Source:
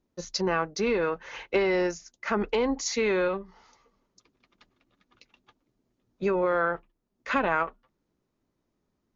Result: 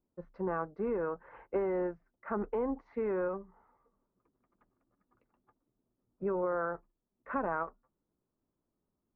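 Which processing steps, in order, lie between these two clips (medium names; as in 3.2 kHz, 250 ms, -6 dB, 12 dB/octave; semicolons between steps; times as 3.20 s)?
low-pass 1.4 kHz 24 dB/octave; trim -7 dB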